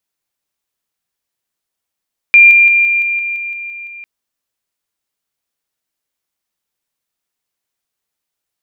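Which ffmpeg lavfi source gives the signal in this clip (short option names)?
-f lavfi -i "aevalsrc='pow(10,(-1.5-3*floor(t/0.17))/20)*sin(2*PI*2390*t)':d=1.7:s=44100"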